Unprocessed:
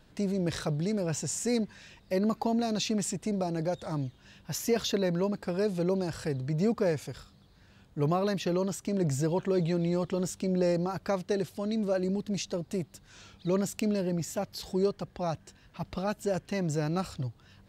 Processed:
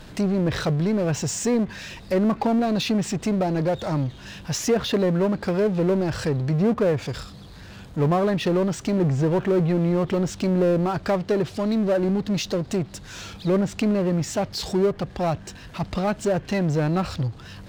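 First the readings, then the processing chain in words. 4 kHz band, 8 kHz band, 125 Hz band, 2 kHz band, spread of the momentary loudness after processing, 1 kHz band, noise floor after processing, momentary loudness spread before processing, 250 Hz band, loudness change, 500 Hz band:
+6.5 dB, +4.0 dB, +8.5 dB, +8.5 dB, 9 LU, +8.0 dB, -42 dBFS, 8 LU, +8.0 dB, +7.5 dB, +7.0 dB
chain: low-pass that closes with the level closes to 1.6 kHz, closed at -23.5 dBFS; power-law waveshaper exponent 0.7; trim +5 dB

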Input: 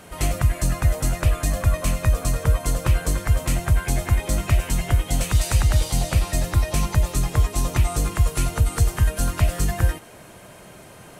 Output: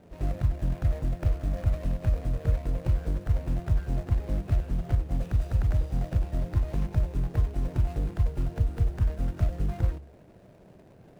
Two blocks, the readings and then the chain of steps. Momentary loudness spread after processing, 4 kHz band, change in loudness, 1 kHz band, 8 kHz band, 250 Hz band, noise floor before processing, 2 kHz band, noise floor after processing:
2 LU, under -20 dB, -7.0 dB, -13.5 dB, under -25 dB, -6.0 dB, -45 dBFS, -17.0 dB, -54 dBFS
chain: median filter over 41 samples; de-hum 69.57 Hz, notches 3; trim -5.5 dB

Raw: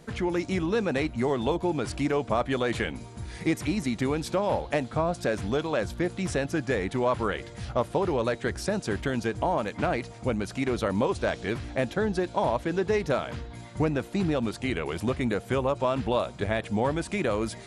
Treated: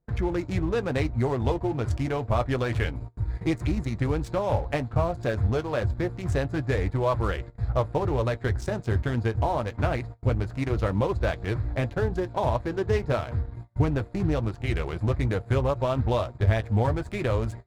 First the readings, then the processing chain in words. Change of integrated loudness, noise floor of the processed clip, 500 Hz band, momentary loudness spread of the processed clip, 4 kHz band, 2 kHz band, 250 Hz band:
+1.0 dB, -45 dBFS, -0.5 dB, 4 LU, -3.5 dB, -2.0 dB, -1.5 dB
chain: local Wiener filter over 15 samples; gate -41 dBFS, range -22 dB; resonant low shelf 130 Hz +11 dB, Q 1.5; flange 0.27 Hz, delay 5.6 ms, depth 3.2 ms, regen -50%; in parallel at +2.5 dB: crossover distortion -44.5 dBFS; on the sum: trim -2.5 dB

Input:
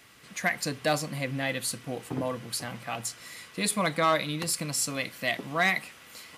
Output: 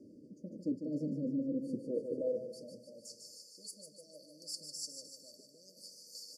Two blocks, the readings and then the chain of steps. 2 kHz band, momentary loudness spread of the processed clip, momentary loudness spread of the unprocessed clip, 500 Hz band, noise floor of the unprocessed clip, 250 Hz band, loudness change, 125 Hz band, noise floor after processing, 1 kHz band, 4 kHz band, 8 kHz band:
under -40 dB, 17 LU, 11 LU, -8.5 dB, -52 dBFS, -4.0 dB, -11.0 dB, -13.5 dB, -61 dBFS, under -40 dB, -14.5 dB, -16.0 dB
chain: reverse; compression 5:1, threshold -42 dBFS, peak gain reduction 19.5 dB; reverse; brick-wall FIR band-stop 630–4400 Hz; flange 1.4 Hz, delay 3.3 ms, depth 1.5 ms, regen -65%; feedback delay 150 ms, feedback 55%, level -7 dB; band-pass sweep 290 Hz -> 3.1 kHz, 1.72–3.65 s; trim +18 dB

